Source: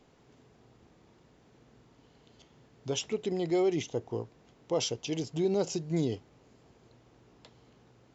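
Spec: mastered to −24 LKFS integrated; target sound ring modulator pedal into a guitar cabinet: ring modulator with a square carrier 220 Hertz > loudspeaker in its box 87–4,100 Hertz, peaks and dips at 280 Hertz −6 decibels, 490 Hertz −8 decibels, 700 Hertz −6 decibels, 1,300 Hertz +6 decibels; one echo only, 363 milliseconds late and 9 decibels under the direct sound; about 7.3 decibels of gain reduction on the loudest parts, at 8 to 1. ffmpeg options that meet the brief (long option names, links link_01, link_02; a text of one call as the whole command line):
ffmpeg -i in.wav -af "acompressor=threshold=-31dB:ratio=8,aecho=1:1:363:0.355,aeval=exprs='val(0)*sgn(sin(2*PI*220*n/s))':channel_layout=same,highpass=87,equalizer=frequency=280:width_type=q:width=4:gain=-6,equalizer=frequency=490:width_type=q:width=4:gain=-8,equalizer=frequency=700:width_type=q:width=4:gain=-6,equalizer=frequency=1300:width_type=q:width=4:gain=6,lowpass=frequency=4100:width=0.5412,lowpass=frequency=4100:width=1.3066,volume=15.5dB" out.wav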